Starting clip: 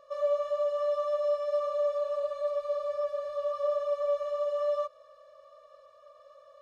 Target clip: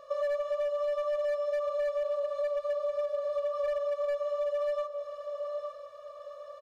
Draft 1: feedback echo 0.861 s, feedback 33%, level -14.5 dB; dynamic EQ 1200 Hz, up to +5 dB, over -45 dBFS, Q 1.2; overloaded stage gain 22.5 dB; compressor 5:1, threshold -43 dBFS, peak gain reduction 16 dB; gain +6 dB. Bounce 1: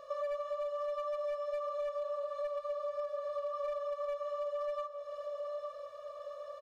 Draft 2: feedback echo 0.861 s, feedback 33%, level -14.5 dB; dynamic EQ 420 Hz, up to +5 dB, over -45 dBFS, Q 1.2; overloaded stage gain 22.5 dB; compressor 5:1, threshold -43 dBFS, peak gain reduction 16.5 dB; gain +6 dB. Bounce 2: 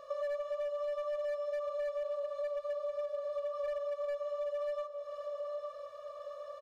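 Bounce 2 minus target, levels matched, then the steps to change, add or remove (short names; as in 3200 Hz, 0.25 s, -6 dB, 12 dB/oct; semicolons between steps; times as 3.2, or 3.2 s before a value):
compressor: peak gain reduction +5.5 dB
change: compressor 5:1, threshold -36 dBFS, peak gain reduction 10.5 dB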